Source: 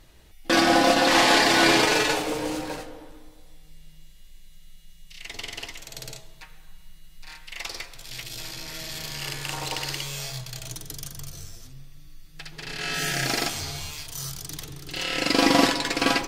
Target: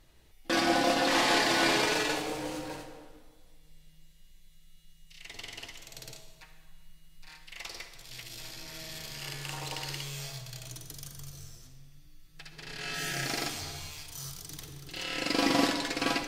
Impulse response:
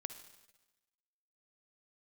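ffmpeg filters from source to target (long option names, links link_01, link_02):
-filter_complex "[1:a]atrim=start_sample=2205,asetrate=43218,aresample=44100[link_01];[0:a][link_01]afir=irnorm=-1:irlink=0,volume=-4.5dB"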